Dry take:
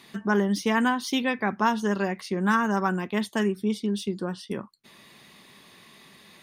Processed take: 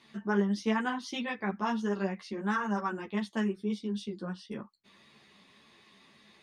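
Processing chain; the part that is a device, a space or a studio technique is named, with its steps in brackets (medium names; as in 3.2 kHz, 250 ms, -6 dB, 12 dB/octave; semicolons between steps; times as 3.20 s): string-machine ensemble chorus (three-phase chorus; low-pass 6.5 kHz 12 dB/octave); trim -4.5 dB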